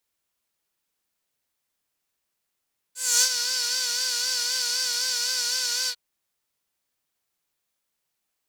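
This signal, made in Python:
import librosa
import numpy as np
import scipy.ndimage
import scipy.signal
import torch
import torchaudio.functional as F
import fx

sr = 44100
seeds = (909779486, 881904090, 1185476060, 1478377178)

y = fx.sub_patch_vibrato(sr, seeds[0], note=71, wave='saw', wave2='square', interval_st=19, detune_cents=16, level2_db=-5.0, sub_db=-15.0, noise_db=-1, kind='bandpass', cutoff_hz=3900.0, q=3.1, env_oct=1.0, env_decay_s=0.39, env_sustain_pct=45, attack_ms=265.0, decay_s=0.07, sustain_db=-8.5, release_s=0.06, note_s=2.94, lfo_hz=3.9, vibrato_cents=60)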